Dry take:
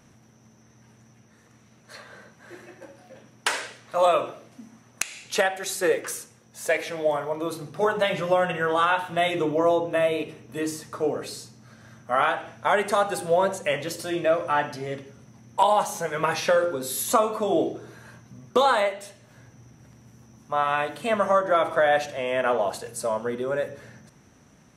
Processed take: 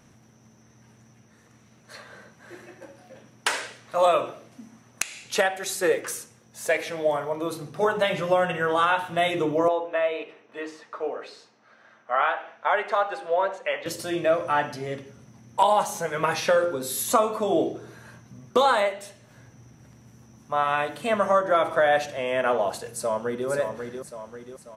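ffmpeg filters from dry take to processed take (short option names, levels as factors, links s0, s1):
-filter_complex "[0:a]asettb=1/sr,asplit=3[s0][s1][s2];[s0]atrim=end=9.684[s3];[s1]atrim=start=9.68:end=13.86,asetpts=PTS-STARTPTS,afade=t=in:d=0.004:c=qsin,afade=t=out:st=4.176:d=0.004:c=qsin,highpass=540,lowpass=2900[s4];[s2]atrim=start=13.856[s5];[s3][s4]acrossfade=d=0.004:c1=hsin:c2=qsin[s6];[s6][s5]acrossfade=d=0.004:c1=qsin:c2=hsin,asplit=2[s7][s8];[s8]afade=t=in:st=22.87:d=0.01,afade=t=out:st=23.48:d=0.01,aecho=0:1:540|1080|1620|2160|2700|3240:0.473151|0.236576|0.118288|0.0591439|0.029572|0.014786[s9];[s7][s9]amix=inputs=2:normalize=0"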